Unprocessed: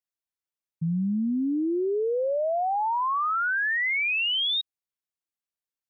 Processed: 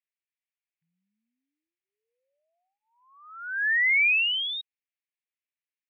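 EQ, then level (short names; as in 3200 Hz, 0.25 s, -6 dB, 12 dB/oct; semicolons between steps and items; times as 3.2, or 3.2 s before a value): elliptic high-pass 1700 Hz, stop band 50 dB; synth low-pass 2400 Hz, resonance Q 2.9; -3.5 dB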